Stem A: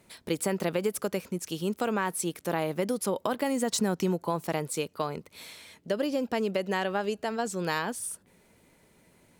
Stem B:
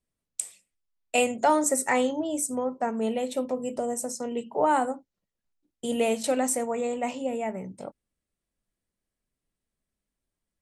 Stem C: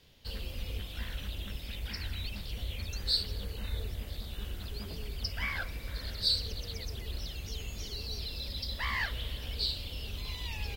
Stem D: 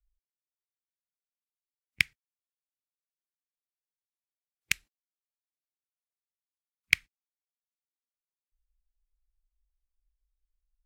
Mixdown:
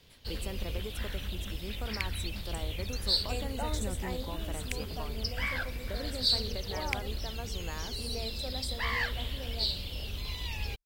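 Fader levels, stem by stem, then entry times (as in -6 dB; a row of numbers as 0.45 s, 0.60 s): -13.5 dB, -17.0 dB, +1.5 dB, -11.0 dB; 0.00 s, 2.15 s, 0.00 s, 0.00 s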